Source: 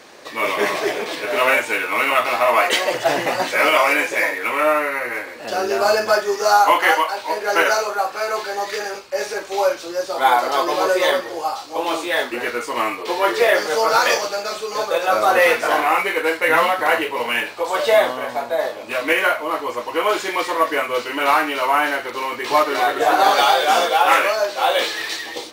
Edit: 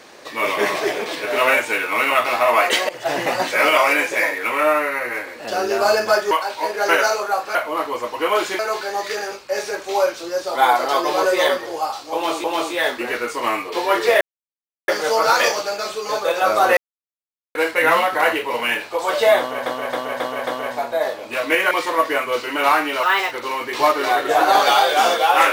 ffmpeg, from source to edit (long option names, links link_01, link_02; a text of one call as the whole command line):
ffmpeg -i in.wav -filter_complex "[0:a]asplit=16[link_01][link_02][link_03][link_04][link_05][link_06][link_07][link_08][link_09][link_10][link_11][link_12][link_13][link_14][link_15][link_16];[link_01]atrim=end=2.89,asetpts=PTS-STARTPTS,afade=type=out:start_time=2.886:duration=0.004:curve=hsin:silence=0.141254[link_17];[link_02]atrim=start=2.89:end=6.312,asetpts=PTS-STARTPTS,afade=type=in:duration=0.35:silence=0.141254[link_18];[link_03]atrim=start=6.978:end=8.222[link_19];[link_04]atrim=start=19.288:end=20.332[link_20];[link_05]atrim=start=8.218:end=12.072[link_21];[link_06]atrim=start=11.768:end=13.54,asetpts=PTS-STARTPTS,afade=type=out:start_time=1.768:duration=0.004:curve=hsin,apad=pad_dur=0.67[link_22];[link_07]atrim=start=13.54:end=15.43,asetpts=PTS-STARTPTS,afade=type=in:duration=0.004:curve=hsin,afade=type=out:start_time=1.886:duration=0.004:curve=hsin[link_23];[link_08]atrim=start=15.43:end=16.21,asetpts=PTS-STARTPTS,volume=0[link_24];[link_09]atrim=start=16.21:end=18.322,asetpts=PTS-STARTPTS,afade=type=in:duration=0.004:curve=hsin[link_25];[link_10]atrim=start=18.048:end=18.322[link_26];[link_11]atrim=start=18.048:end=18.322[link_27];[link_12]atrim=start=18.048:end=18.322[link_28];[link_13]atrim=start=18.048:end=19.292[link_29];[link_14]atrim=start=20.328:end=21.654[link_30];[link_15]atrim=start=21.65:end=22.03,asetpts=PTS-STARTPTS,asetrate=58212,aresample=44100,atrim=end_sample=12695,asetpts=PTS-STARTPTS[link_31];[link_16]atrim=start=22.026[link_32];[link_17][link_18]concat=n=2:v=0:a=1[link_33];[link_33][link_19]acrossfade=duration=0.004:curve1=hsin:curve2=hsin[link_34];[link_34][link_20]acrossfade=duration=0.004:curve1=hsin:curve2=hsin[link_35];[link_35][link_21]acrossfade=duration=0.004:curve1=hsin:curve2=hsin[link_36];[link_22][link_23][link_24][link_25]concat=n=4:v=0:a=1[link_37];[link_36][link_37]acrossfade=duration=0.004:curve1=hsin:curve2=hsin[link_38];[link_38][link_26]acrossfade=duration=0.004:curve1=hsin:curve2=hsin[link_39];[link_39][link_27]acrossfade=duration=0.004:curve1=hsin:curve2=hsin[link_40];[link_40][link_28]acrossfade=duration=0.004:curve1=hsin:curve2=hsin[link_41];[link_41][link_29]acrossfade=duration=0.004:curve1=hsin:curve2=hsin[link_42];[link_42][link_30]acrossfade=duration=0.004:curve1=hsin:curve2=hsin[link_43];[link_43][link_31]acrossfade=duration=0.004:curve1=hsin:curve2=hsin[link_44];[link_44][link_32]acrossfade=duration=0.004:curve1=hsin:curve2=hsin" out.wav